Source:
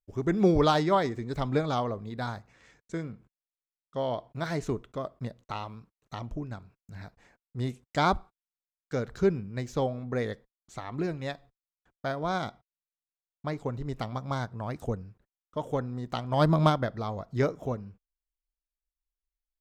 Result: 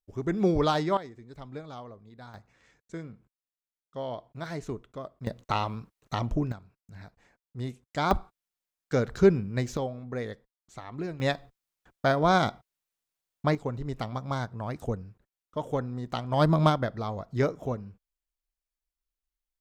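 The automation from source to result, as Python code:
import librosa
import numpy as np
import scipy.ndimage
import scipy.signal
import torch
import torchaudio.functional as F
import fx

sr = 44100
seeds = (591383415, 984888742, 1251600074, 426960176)

y = fx.gain(x, sr, db=fx.steps((0.0, -2.0), (0.97, -13.5), (2.34, -4.5), (5.27, 8.0), (6.52, -3.0), (8.11, 5.0), (9.77, -3.5), (11.2, 8.0), (13.55, 0.5)))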